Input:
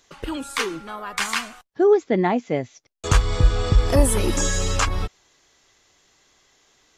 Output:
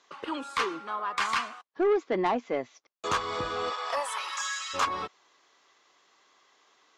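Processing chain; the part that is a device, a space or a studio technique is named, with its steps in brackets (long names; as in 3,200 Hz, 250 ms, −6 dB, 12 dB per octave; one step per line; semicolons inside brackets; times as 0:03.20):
0:03.69–0:04.73: high-pass filter 540 Hz → 1,500 Hz 24 dB per octave
intercom (band-pass filter 310–5,000 Hz; parametric band 1,100 Hz +8.5 dB 0.53 octaves; soft clipping −16 dBFS, distortion −12 dB)
level −3.5 dB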